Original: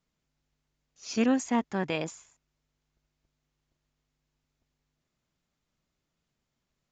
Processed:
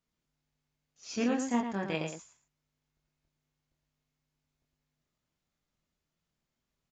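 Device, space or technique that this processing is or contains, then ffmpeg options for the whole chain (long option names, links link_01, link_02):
slapback doubling: -filter_complex "[0:a]asplit=3[link_01][link_02][link_03];[link_02]adelay=25,volume=-4dB[link_04];[link_03]adelay=113,volume=-6dB[link_05];[link_01][link_04][link_05]amix=inputs=3:normalize=0,volume=-5.5dB"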